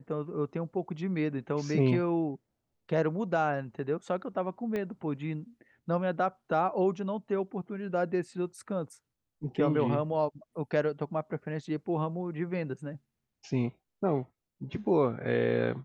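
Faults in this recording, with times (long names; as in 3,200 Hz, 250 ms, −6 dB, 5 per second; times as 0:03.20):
0:04.76: click −22 dBFS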